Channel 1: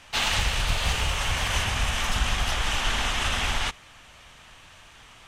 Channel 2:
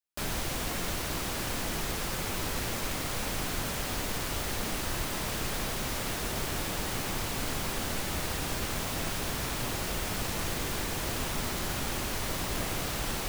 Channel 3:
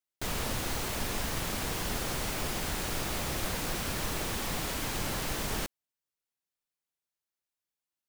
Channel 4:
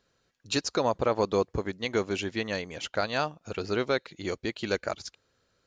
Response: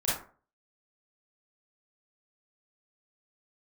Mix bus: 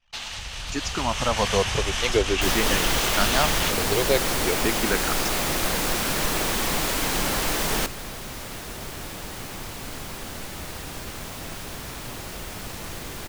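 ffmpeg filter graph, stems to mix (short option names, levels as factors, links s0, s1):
-filter_complex "[0:a]equalizer=f=5200:t=o:w=1.3:g=6.5,acompressor=threshold=0.0631:ratio=6,volume=0.422[s0];[1:a]adelay=2450,volume=0.266[s1];[2:a]equalizer=f=87:t=o:w=1.3:g=-11.5,adelay=2200,volume=1.06[s2];[3:a]asplit=2[s3][s4];[s4]afreqshift=-0.47[s5];[s3][s5]amix=inputs=2:normalize=1,adelay=200,volume=0.75[s6];[s0][s1][s2][s6]amix=inputs=4:normalize=0,anlmdn=0.00251,dynaudnorm=f=160:g=13:m=2.82"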